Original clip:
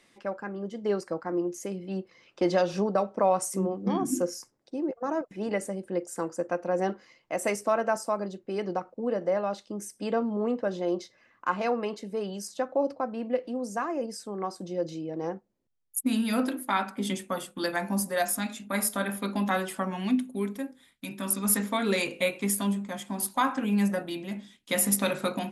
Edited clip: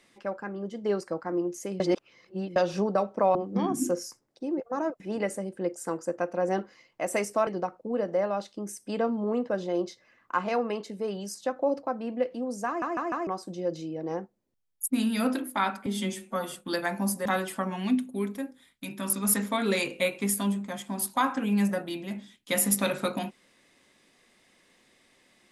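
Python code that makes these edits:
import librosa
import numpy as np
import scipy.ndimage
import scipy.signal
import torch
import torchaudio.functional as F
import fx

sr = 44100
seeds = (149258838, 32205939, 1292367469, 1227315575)

y = fx.edit(x, sr, fx.reverse_span(start_s=1.8, length_s=0.76),
    fx.cut(start_s=3.35, length_s=0.31),
    fx.cut(start_s=7.78, length_s=0.82),
    fx.stutter_over(start_s=13.8, slice_s=0.15, count=4),
    fx.stretch_span(start_s=16.99, length_s=0.45, factor=1.5),
    fx.cut(start_s=18.16, length_s=1.3), tone=tone)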